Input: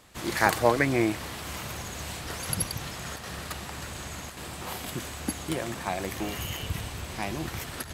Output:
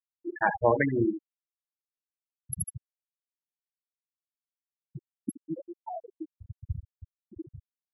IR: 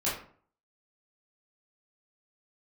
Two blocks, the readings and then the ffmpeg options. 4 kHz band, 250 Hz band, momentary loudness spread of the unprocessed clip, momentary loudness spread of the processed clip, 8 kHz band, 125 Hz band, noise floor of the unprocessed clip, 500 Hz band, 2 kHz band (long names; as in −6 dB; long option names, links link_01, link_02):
below −40 dB, −2.5 dB, 13 LU, 24 LU, −9.0 dB, −5.0 dB, −40 dBFS, −1.5 dB, −5.5 dB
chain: -af "aecho=1:1:43|75:0.237|0.422,afftfilt=real='re*gte(hypot(re,im),0.224)':imag='im*gte(hypot(re,im),0.224)':win_size=1024:overlap=0.75,volume=-1dB"